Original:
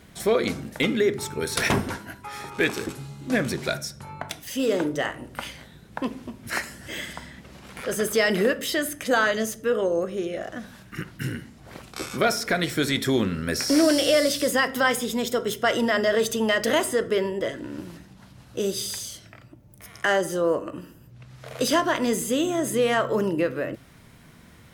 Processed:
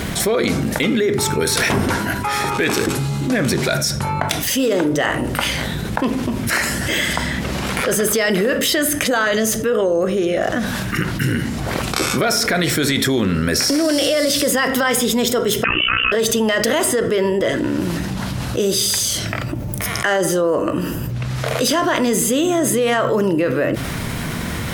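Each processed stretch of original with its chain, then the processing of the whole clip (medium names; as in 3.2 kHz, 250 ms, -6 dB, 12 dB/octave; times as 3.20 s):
15.64–16.12 s: AM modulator 61 Hz, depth 80% + tilt EQ +2 dB/octave + frequency inversion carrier 3.2 kHz
whole clip: peak limiter -17 dBFS; level flattener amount 70%; trim +6 dB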